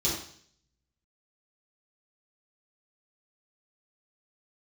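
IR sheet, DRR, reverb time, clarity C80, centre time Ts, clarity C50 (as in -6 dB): -8.5 dB, 0.55 s, 7.0 dB, 41 ms, 3.5 dB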